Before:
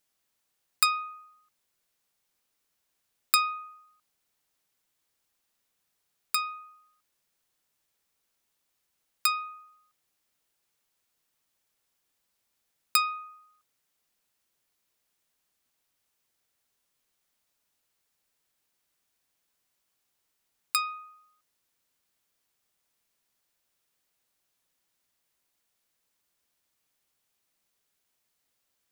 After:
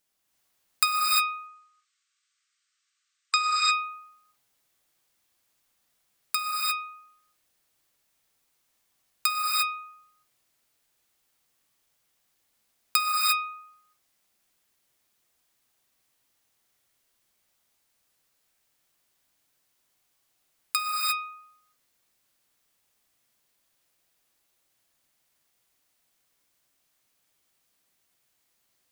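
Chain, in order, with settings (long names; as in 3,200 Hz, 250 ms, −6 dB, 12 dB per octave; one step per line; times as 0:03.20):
0:01.11–0:03.37: linear-phase brick-wall band-pass 1,100–8,600 Hz
reverb whose tail is shaped and stops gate 380 ms rising, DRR −3.5 dB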